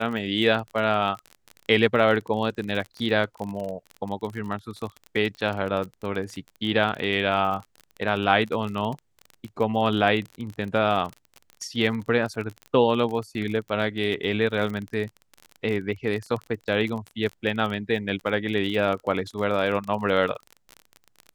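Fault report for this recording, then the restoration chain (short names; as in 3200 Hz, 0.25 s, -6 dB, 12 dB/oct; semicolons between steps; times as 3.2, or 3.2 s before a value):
crackle 34/s -30 dBFS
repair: de-click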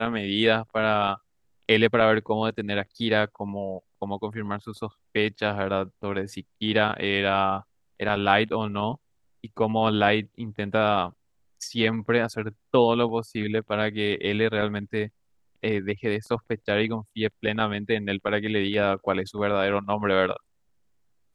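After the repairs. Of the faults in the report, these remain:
none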